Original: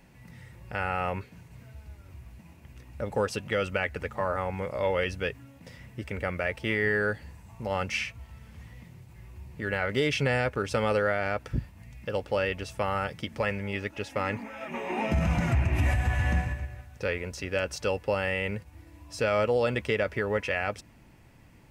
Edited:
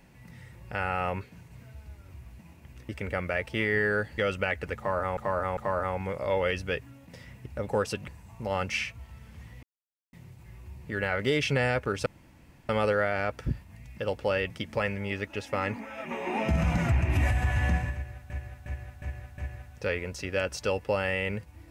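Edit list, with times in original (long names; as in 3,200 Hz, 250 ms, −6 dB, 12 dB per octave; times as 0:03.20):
0:02.89–0:03.51: swap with 0:05.99–0:07.28
0:04.10–0:04.50: repeat, 3 plays
0:08.83: splice in silence 0.50 s
0:10.76: splice in room tone 0.63 s
0:12.57–0:13.13: remove
0:16.57–0:16.93: repeat, 5 plays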